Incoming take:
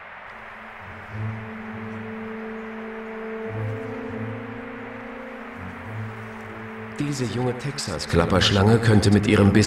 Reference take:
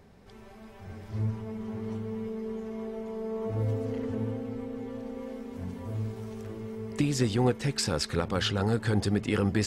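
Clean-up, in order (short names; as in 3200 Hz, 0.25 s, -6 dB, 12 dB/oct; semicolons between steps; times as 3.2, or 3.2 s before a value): noise print and reduce 6 dB; inverse comb 90 ms -11.5 dB; gain 0 dB, from 8.07 s -10 dB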